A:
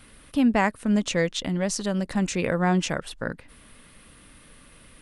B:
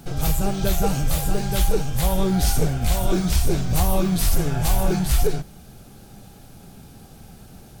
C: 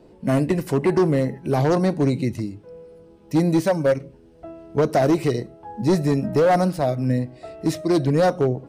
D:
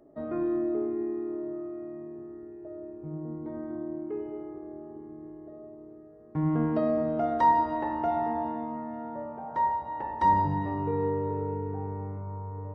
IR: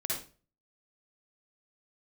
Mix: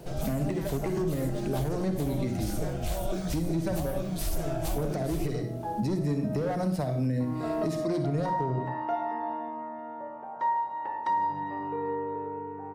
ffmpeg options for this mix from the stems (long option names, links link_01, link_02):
-filter_complex "[0:a]volume=-17dB[link_01];[1:a]equalizer=frequency=620:width=5.4:gain=14,volume=-7.5dB[link_02];[2:a]bandreject=frequency=60:width_type=h:width=6,bandreject=frequency=120:width_type=h:width=6,bandreject=frequency=180:width_type=h:width=6,bandreject=frequency=240:width_type=h:width=6,bandreject=frequency=300:width_type=h:width=6,bandreject=frequency=360:width_type=h:width=6,acrossover=split=250[link_03][link_04];[link_04]acompressor=threshold=-27dB:ratio=6[link_05];[link_03][link_05]amix=inputs=2:normalize=0,volume=0.5dB,asplit=2[link_06][link_07];[link_07]volume=-7.5dB[link_08];[3:a]highpass=frequency=690:poles=1,adelay=850,volume=0dB,asplit=2[link_09][link_10];[link_10]volume=-12.5dB[link_11];[4:a]atrim=start_sample=2205[link_12];[link_08][link_11]amix=inputs=2:normalize=0[link_13];[link_13][link_12]afir=irnorm=-1:irlink=0[link_14];[link_01][link_02][link_06][link_09][link_14]amix=inputs=5:normalize=0,alimiter=limit=-20.5dB:level=0:latency=1:release=393"